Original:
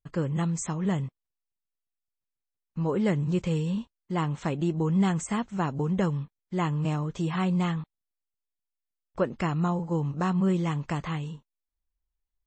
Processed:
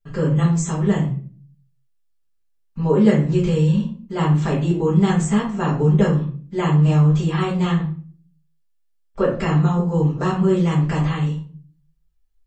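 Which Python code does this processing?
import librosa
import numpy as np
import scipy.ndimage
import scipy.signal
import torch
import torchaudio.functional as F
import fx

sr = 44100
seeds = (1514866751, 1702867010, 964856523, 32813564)

y = fx.room_shoebox(x, sr, seeds[0], volume_m3=34.0, walls='mixed', distance_m=1.2)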